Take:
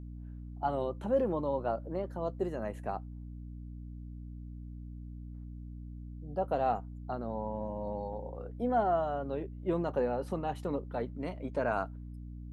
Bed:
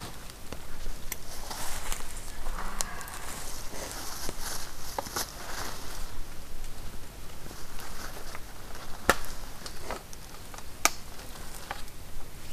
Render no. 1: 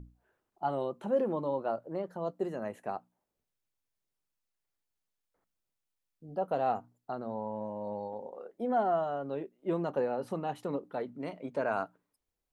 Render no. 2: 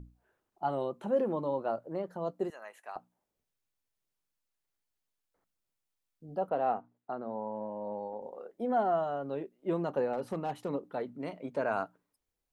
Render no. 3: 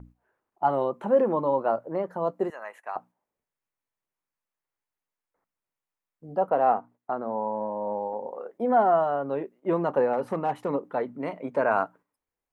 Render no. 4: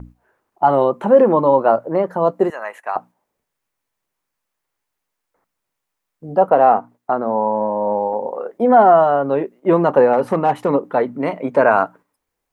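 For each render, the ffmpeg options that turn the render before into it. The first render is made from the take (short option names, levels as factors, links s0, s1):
-af "bandreject=f=60:t=h:w=6,bandreject=f=120:t=h:w=6,bandreject=f=180:t=h:w=6,bandreject=f=240:t=h:w=6,bandreject=f=300:t=h:w=6"
-filter_complex "[0:a]asettb=1/sr,asplit=3[s0][s1][s2];[s0]atrim=end=2.504[s3];[s1]atrim=start=2.5:end=2.96,asetpts=PTS-STARTPTS,afade=t=in:d=0.004:c=qsin,afade=t=out:st=0.456:d=0.004:c=qsin,highpass=1100[s4];[s2]atrim=start=2.956[s5];[s3][s4]acrossfade=d=0.004:c1=hsin:c2=qsin[s6];[s6][s5]acrossfade=d=0.004:c1=qsin:c2=hsin,asettb=1/sr,asplit=3[s7][s8][s9];[s7]atrim=end=6.494[s10];[s8]atrim=start=6.49:end=8.22,asetpts=PTS-STARTPTS,afade=t=in:d=0.004:c=qsin,afade=t=out:st=1.726:d=0.004:c=qsin,highpass=180,lowpass=2500[s11];[s9]atrim=start=8.216[s12];[s10][s11]acrossfade=d=0.004:c1=hsin:c2=qsin[s13];[s13][s12]acrossfade=d=0.004:c1=qsin:c2=hsin,asettb=1/sr,asplit=3[s14][s15][s16];[s14]atrim=end=10.134[s17];[s15]atrim=start=10.13:end=10.69,asetpts=PTS-STARTPTS,afade=t=in:d=0.004:c=qsin,afade=t=out:st=0.556:d=0.004:c=qsin,volume=23.7,asoftclip=hard,volume=0.0422[s18];[s16]atrim=start=10.686[s19];[s17][s18]acrossfade=d=0.004:c1=hsin:c2=qsin[s20];[s20][s19]acrossfade=d=0.004:c1=qsin:c2=hsin"
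-af "agate=range=0.447:threshold=0.00158:ratio=16:detection=peak,equalizer=f=125:t=o:w=1:g=3,equalizer=f=250:t=o:w=1:g=4,equalizer=f=500:t=o:w=1:g=5,equalizer=f=1000:t=o:w=1:g=9,equalizer=f=2000:t=o:w=1:g=7,equalizer=f=4000:t=o:w=1:g=-3"
-af "volume=3.55,alimiter=limit=0.794:level=0:latency=1"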